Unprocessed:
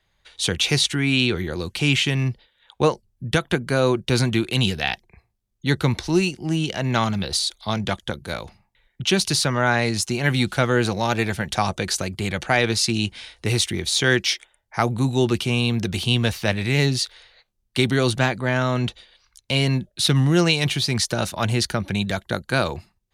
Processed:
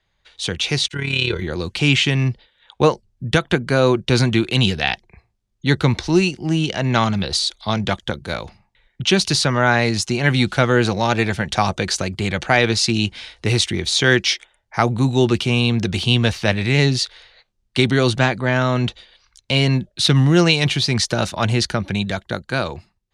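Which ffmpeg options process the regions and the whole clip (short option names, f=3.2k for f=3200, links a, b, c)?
-filter_complex "[0:a]asettb=1/sr,asplit=3[a][b][c];[a]atrim=end=0.884[d];[b]atrim=start=0.88:end=1.42,asetpts=PTS-STARTPTS,afade=t=in:d=0.004:c=qsin,afade=t=out:st=0.536:d=0.004:c=qsin,agate=range=-33dB:threshold=-27dB:ratio=3:release=100:detection=peak,aecho=1:1:2:0.74,atrim=end_sample=23814,tremolo=f=35:d=0.667[e];[c]atrim=start=1.416[f];[d][e]acrossfade=d=0.004:c1=hsin:c2=qsin[g];[g][f]acrossfade=d=0.004:c1=qsin:c2=hsin,lowpass=7.2k,dynaudnorm=f=120:g=21:m=11.5dB,volume=-1dB"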